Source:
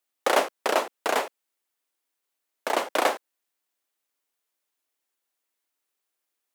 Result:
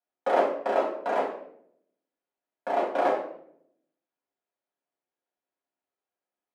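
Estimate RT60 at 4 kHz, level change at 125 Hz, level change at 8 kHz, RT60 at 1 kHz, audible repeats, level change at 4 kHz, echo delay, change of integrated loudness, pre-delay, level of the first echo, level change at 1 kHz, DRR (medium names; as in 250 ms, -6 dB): 0.50 s, no reading, under -20 dB, 0.55 s, no echo, -14.0 dB, no echo, -1.5 dB, 4 ms, no echo, -0.5 dB, -4.0 dB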